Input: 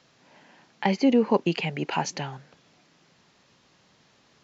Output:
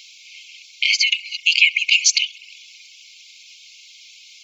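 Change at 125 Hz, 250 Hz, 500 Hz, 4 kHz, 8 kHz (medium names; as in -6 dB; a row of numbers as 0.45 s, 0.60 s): under -40 dB, under -40 dB, under -40 dB, +20.5 dB, no reading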